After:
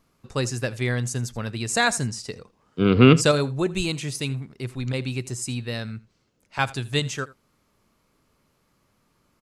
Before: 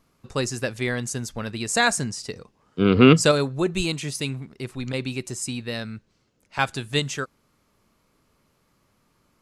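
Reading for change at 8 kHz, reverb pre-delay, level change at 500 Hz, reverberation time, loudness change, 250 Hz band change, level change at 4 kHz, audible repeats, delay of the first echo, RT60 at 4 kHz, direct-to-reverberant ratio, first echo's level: −1.0 dB, no reverb audible, −1.0 dB, no reverb audible, −0.5 dB, −0.5 dB, −1.0 dB, 1, 81 ms, no reverb audible, no reverb audible, −20.0 dB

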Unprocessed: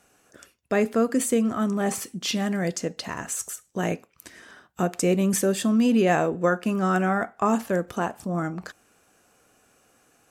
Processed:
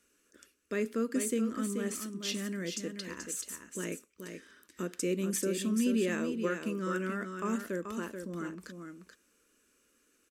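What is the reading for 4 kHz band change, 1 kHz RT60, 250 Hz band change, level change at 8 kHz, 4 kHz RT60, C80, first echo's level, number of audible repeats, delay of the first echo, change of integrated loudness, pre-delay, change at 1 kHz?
−7.0 dB, no reverb audible, −9.0 dB, −7.0 dB, no reverb audible, no reverb audible, −7.0 dB, 1, 432 ms, −9.5 dB, no reverb audible, −15.5 dB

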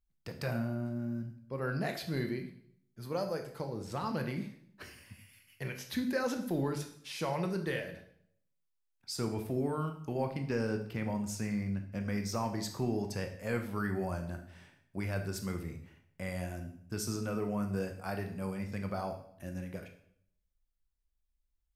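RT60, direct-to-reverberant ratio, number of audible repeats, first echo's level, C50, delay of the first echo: 0.65 s, 5.0 dB, no echo audible, no echo audible, 9.0 dB, no echo audible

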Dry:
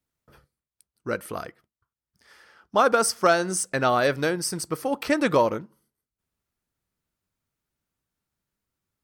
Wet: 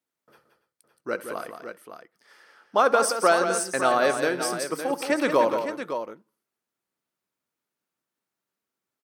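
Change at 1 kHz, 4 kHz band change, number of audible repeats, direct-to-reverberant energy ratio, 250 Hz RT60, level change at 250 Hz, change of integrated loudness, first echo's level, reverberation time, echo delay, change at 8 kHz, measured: +0.5 dB, −1.0 dB, 4, no reverb audible, no reverb audible, −2.0 dB, −0.5 dB, −18.0 dB, no reverb audible, 69 ms, −1.5 dB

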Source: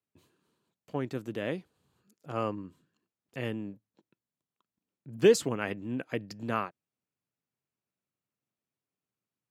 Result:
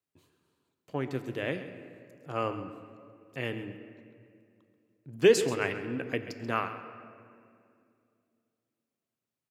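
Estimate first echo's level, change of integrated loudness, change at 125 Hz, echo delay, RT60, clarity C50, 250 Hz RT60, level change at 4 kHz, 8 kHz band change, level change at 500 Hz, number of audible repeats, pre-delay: −13.5 dB, +1.0 dB, 0.0 dB, 134 ms, 2.4 s, 9.0 dB, 3.1 s, +2.5 dB, +0.5 dB, +1.0 dB, 2, 3 ms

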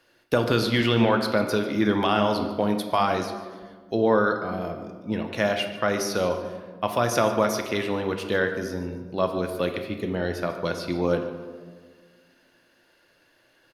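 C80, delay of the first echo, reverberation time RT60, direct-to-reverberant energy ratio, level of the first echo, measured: 9.0 dB, 146 ms, 1.6 s, 5.0 dB, −16.0 dB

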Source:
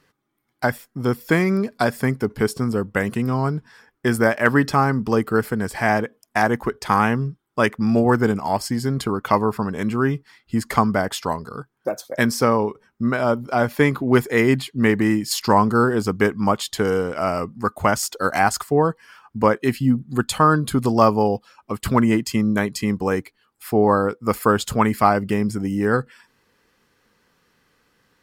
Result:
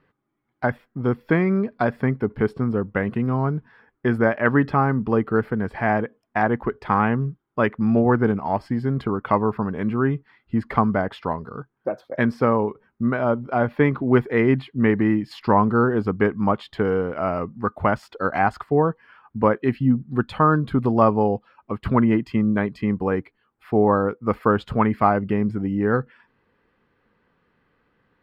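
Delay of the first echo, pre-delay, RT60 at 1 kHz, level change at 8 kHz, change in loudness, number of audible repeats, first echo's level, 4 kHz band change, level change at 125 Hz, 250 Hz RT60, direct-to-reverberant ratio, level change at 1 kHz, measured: no echo audible, no reverb audible, no reverb audible, below −25 dB, −1.5 dB, no echo audible, no echo audible, −12.5 dB, 0.0 dB, no reverb audible, no reverb audible, −2.0 dB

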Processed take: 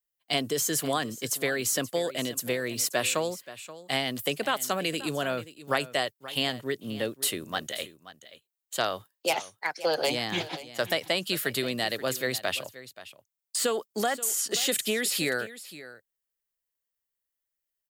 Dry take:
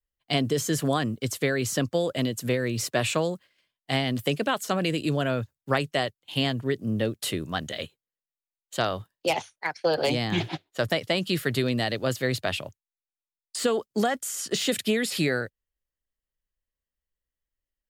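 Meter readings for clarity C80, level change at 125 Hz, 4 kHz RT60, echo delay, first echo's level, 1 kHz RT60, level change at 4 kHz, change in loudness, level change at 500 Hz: no reverb audible, −11.0 dB, no reverb audible, 529 ms, −16.0 dB, no reverb audible, +0.5 dB, −1.5 dB, −3.0 dB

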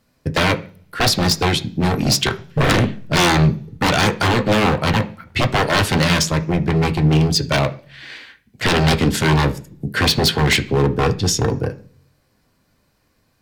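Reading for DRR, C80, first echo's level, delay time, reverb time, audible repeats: 6.0 dB, 21.5 dB, no echo audible, no echo audible, 0.45 s, no echo audible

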